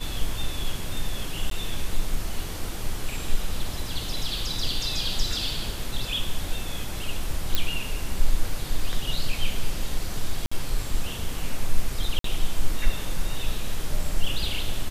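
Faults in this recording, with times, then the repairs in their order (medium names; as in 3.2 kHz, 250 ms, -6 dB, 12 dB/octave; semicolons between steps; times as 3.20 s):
1.50–1.51 s: dropout 13 ms
7.55 s: pop -7 dBFS
10.46–10.52 s: dropout 55 ms
12.19–12.24 s: dropout 53 ms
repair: de-click; interpolate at 1.50 s, 13 ms; interpolate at 10.46 s, 55 ms; interpolate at 12.19 s, 53 ms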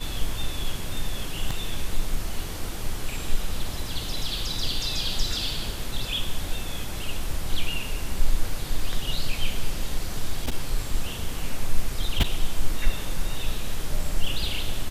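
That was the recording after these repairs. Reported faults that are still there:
nothing left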